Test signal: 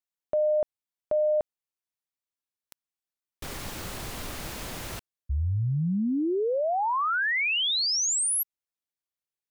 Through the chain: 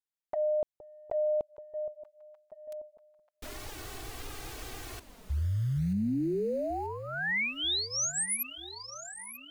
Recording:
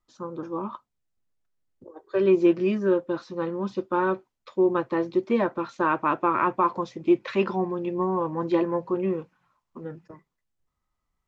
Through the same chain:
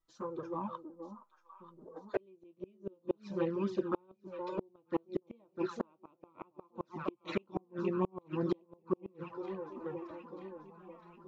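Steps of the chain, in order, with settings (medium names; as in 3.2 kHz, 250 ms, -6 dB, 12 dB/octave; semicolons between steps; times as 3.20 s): echo whose repeats swap between lows and highs 468 ms, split 940 Hz, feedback 71%, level -10 dB; touch-sensitive flanger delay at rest 6.2 ms, full sweep at -21.5 dBFS; inverted gate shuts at -17 dBFS, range -37 dB; trim -3 dB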